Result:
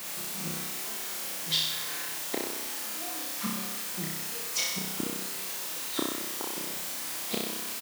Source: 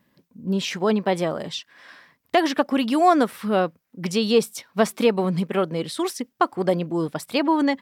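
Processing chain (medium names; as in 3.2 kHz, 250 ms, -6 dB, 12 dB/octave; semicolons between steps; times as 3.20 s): low-pass 6.5 kHz; comb 5.9 ms, depth 81%; inverted gate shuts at -19 dBFS, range -38 dB; square tremolo 1.4 Hz, depth 60%, duty 50%; in parallel at -4 dB: word length cut 6-bit, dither triangular; on the sum: high-pass 190 Hz 12 dB/octave; on a send: flutter echo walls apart 5.4 m, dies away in 0.95 s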